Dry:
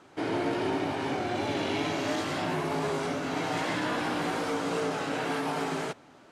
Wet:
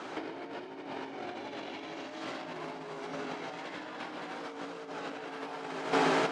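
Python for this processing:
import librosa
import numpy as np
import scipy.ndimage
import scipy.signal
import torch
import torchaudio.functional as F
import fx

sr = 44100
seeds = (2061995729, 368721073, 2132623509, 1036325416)

y = fx.bandpass_edges(x, sr, low_hz=210.0, high_hz=5700.0)
y = fx.hum_notches(y, sr, base_hz=50, count=8)
y = fx.echo_feedback(y, sr, ms=342, feedback_pct=26, wet_db=-8.5)
y = fx.over_compress(y, sr, threshold_db=-39.0, ratio=-0.5)
y = F.gain(torch.from_numpy(y), 4.0).numpy()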